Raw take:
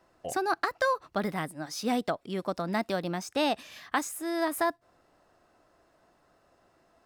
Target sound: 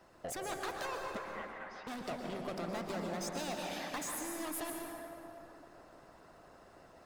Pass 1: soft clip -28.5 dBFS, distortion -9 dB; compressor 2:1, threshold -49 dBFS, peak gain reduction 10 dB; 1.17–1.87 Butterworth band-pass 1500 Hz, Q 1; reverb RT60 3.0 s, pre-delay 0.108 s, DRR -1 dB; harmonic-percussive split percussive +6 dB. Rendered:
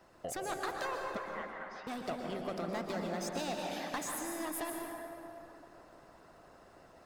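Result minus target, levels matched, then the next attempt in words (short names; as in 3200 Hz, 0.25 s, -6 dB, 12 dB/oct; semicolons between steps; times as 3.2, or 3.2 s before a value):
soft clip: distortion -5 dB
soft clip -36 dBFS, distortion -5 dB; compressor 2:1, threshold -49 dBFS, peak gain reduction 6.5 dB; 1.17–1.87 Butterworth band-pass 1500 Hz, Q 1; reverb RT60 3.0 s, pre-delay 0.108 s, DRR -1 dB; harmonic-percussive split percussive +6 dB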